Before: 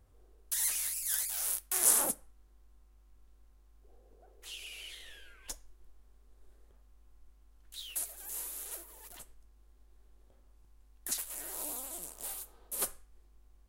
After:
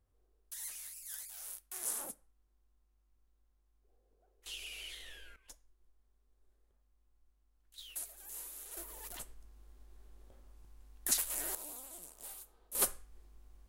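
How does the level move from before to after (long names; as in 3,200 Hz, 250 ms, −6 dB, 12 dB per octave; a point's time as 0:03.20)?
−12.5 dB
from 0:04.46 0 dB
from 0:05.36 −12.5 dB
from 0:07.78 −6 dB
from 0:08.77 +4 dB
from 0:11.55 −7.5 dB
from 0:12.75 +3 dB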